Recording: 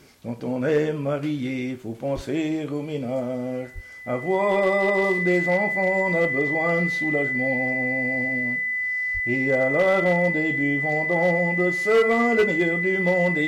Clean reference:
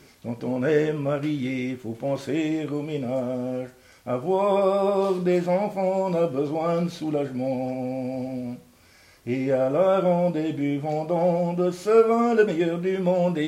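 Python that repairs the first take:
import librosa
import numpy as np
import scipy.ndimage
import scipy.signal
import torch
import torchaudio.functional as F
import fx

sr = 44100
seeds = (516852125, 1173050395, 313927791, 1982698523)

y = fx.fix_declip(x, sr, threshold_db=-13.0)
y = fx.notch(y, sr, hz=2000.0, q=30.0)
y = fx.highpass(y, sr, hz=140.0, slope=24, at=(2.15, 2.27), fade=0.02)
y = fx.highpass(y, sr, hz=140.0, slope=24, at=(3.74, 3.86), fade=0.02)
y = fx.highpass(y, sr, hz=140.0, slope=24, at=(9.13, 9.25), fade=0.02)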